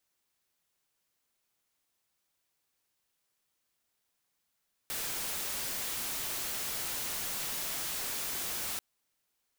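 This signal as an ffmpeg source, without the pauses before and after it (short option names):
-f lavfi -i "anoisesrc=c=white:a=0.0274:d=3.89:r=44100:seed=1"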